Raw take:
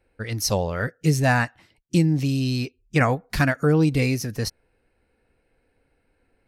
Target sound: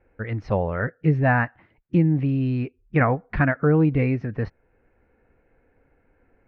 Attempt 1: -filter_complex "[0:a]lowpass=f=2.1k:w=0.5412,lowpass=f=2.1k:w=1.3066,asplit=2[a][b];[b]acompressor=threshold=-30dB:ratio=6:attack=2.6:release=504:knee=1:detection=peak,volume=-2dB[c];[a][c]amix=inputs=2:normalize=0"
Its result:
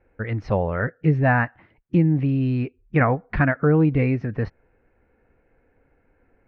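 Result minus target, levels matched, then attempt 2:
compressor: peak gain reduction -10 dB
-filter_complex "[0:a]lowpass=f=2.1k:w=0.5412,lowpass=f=2.1k:w=1.3066,asplit=2[a][b];[b]acompressor=threshold=-42dB:ratio=6:attack=2.6:release=504:knee=1:detection=peak,volume=-2dB[c];[a][c]amix=inputs=2:normalize=0"

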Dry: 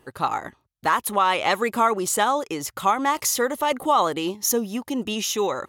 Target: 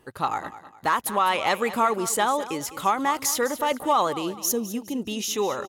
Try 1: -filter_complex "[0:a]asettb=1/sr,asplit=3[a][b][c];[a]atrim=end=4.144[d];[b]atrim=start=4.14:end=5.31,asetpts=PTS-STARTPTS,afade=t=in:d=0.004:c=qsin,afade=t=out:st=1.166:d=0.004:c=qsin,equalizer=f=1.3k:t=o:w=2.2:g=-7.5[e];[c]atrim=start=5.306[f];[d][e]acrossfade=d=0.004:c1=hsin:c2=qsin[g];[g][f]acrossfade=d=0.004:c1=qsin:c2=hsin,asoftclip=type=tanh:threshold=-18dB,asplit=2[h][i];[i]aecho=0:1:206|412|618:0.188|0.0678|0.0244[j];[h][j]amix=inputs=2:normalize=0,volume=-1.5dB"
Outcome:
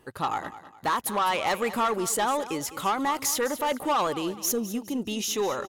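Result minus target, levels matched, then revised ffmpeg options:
soft clip: distortion +15 dB
-filter_complex "[0:a]asettb=1/sr,asplit=3[a][b][c];[a]atrim=end=4.144[d];[b]atrim=start=4.14:end=5.31,asetpts=PTS-STARTPTS,afade=t=in:d=0.004:c=qsin,afade=t=out:st=1.166:d=0.004:c=qsin,equalizer=f=1.3k:t=o:w=2.2:g=-7.5[e];[c]atrim=start=5.306[f];[d][e]acrossfade=d=0.004:c1=hsin:c2=qsin[g];[g][f]acrossfade=d=0.004:c1=qsin:c2=hsin,asoftclip=type=tanh:threshold=-7dB,asplit=2[h][i];[i]aecho=0:1:206|412|618:0.188|0.0678|0.0244[j];[h][j]amix=inputs=2:normalize=0,volume=-1.5dB"

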